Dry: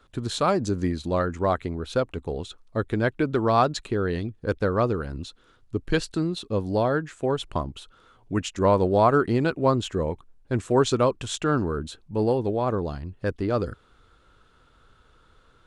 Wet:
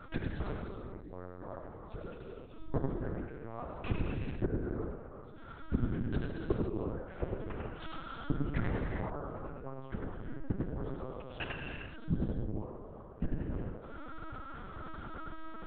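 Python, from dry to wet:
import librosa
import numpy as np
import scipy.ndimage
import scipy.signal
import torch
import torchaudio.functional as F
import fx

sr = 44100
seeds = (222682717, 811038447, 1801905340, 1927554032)

p1 = scipy.signal.sosfilt(scipy.signal.butter(2, 1900.0, 'lowpass', fs=sr, output='sos'), x)
p2 = fx.gate_flip(p1, sr, shuts_db=-27.0, range_db=-35)
p3 = p2 + fx.echo_single(p2, sr, ms=95, db=-4.0, dry=0)
p4 = fx.rev_gated(p3, sr, seeds[0], gate_ms=450, shape='flat', drr_db=-0.5)
p5 = fx.lpc_vocoder(p4, sr, seeds[1], excitation='pitch_kept', order=8)
y = p5 * 10.0 ** (9.5 / 20.0)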